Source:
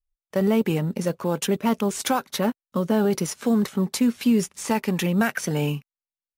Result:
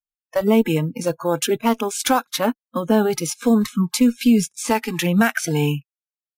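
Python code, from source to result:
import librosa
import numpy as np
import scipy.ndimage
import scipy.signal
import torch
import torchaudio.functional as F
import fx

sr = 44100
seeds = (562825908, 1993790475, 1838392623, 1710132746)

y = fx.cheby_harmonics(x, sr, harmonics=(2,), levels_db=(-21,), full_scale_db=-10.0)
y = fx.noise_reduce_blind(y, sr, reduce_db=29)
y = y * librosa.db_to_amplitude(5.0)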